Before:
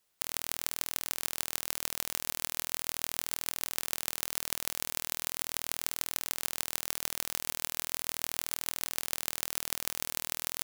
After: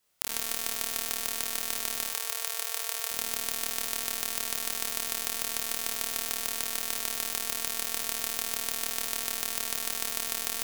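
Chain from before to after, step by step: 2.04–3.11 s: elliptic high-pass 440 Hz, stop band 40 dB; on a send: flutter echo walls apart 5 m, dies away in 0.7 s

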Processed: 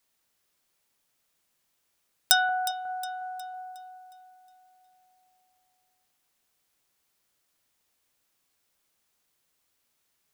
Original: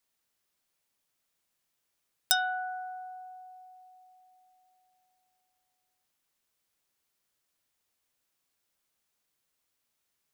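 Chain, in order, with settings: 2.71–3.54 s: frequency weighting A; on a send: echo whose repeats swap between lows and highs 181 ms, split 1.2 kHz, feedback 65%, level -10 dB; on the sum: trim +5 dB

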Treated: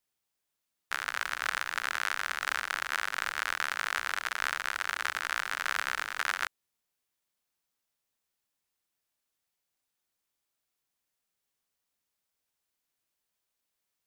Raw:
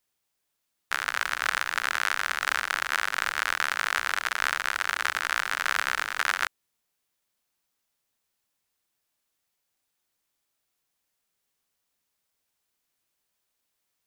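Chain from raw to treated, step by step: trim -5 dB

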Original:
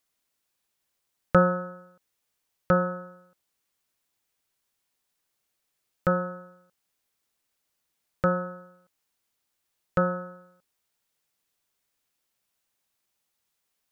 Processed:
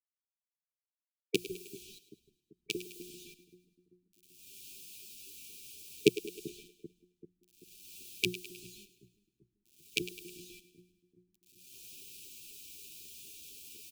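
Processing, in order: recorder AGC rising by 16 dB/s; treble shelf 2.5 kHz -3.5 dB; hum notches 60/120/180 Hz; in parallel at 0 dB: compression, threshold -24 dBFS, peak gain reduction 24.5 dB; on the sum: LFO high-pass saw up 4 Hz 380–1500 Hz; bit crusher 7-bit; brick-wall FIR band-stop 440–2300 Hz; on a send: two-band feedback delay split 330 Hz, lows 388 ms, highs 104 ms, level -14 dB; on the sum: endless flanger 8.9 ms +0.28 Hz; trim -3 dB

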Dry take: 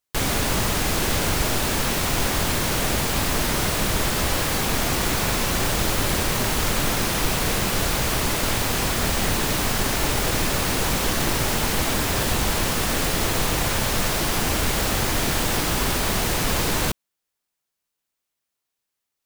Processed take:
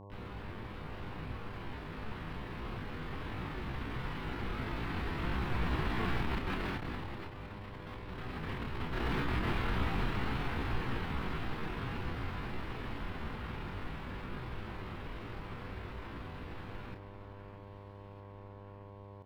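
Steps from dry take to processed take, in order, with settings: Doppler pass-by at 7.65 s, 21 m/s, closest 13 m; peaking EQ 350 Hz -11.5 dB 0.48 oct; hum notches 60/120/180/240/300 Hz; echo whose repeats swap between lows and highs 633 ms, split 1.6 kHz, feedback 74%, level -11 dB; compressor with a negative ratio -31 dBFS, ratio -0.5; pitch shift +9 st; distance through air 450 m; mains buzz 100 Hz, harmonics 11, -51 dBFS -4 dB/octave; doubling 32 ms -7 dB

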